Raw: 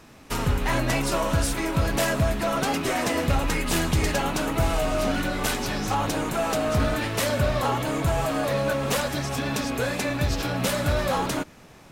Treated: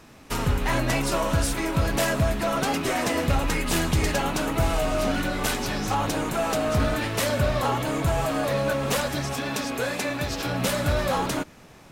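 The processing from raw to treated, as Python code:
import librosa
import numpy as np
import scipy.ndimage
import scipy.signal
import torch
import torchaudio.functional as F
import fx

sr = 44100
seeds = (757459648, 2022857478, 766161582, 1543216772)

y = fx.low_shelf(x, sr, hz=130.0, db=-11.5, at=(9.33, 10.46))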